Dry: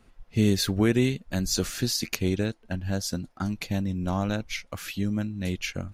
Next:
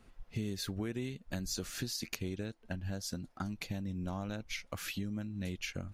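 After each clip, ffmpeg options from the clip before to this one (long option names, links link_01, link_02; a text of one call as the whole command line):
ffmpeg -i in.wav -af "acompressor=threshold=-33dB:ratio=5,volume=-2.5dB" out.wav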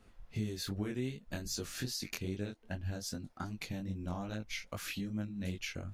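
ffmpeg -i in.wav -af "flanger=delay=19:depth=5.5:speed=2.5,volume=2.5dB" out.wav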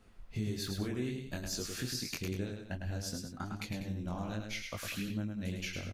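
ffmpeg -i in.wav -af "aecho=1:1:105|195.3:0.562|0.251" out.wav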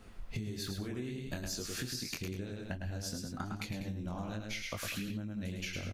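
ffmpeg -i in.wav -af "acompressor=threshold=-43dB:ratio=10,volume=7.5dB" out.wav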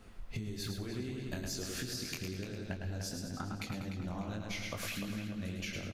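ffmpeg -i in.wav -filter_complex "[0:a]asplit=2[link_01][link_02];[link_02]adelay=298,lowpass=frequency=4200:poles=1,volume=-7dB,asplit=2[link_03][link_04];[link_04]adelay=298,lowpass=frequency=4200:poles=1,volume=0.46,asplit=2[link_05][link_06];[link_06]adelay=298,lowpass=frequency=4200:poles=1,volume=0.46,asplit=2[link_07][link_08];[link_08]adelay=298,lowpass=frequency=4200:poles=1,volume=0.46,asplit=2[link_09][link_10];[link_10]adelay=298,lowpass=frequency=4200:poles=1,volume=0.46[link_11];[link_01][link_03][link_05][link_07][link_09][link_11]amix=inputs=6:normalize=0,volume=-1dB" out.wav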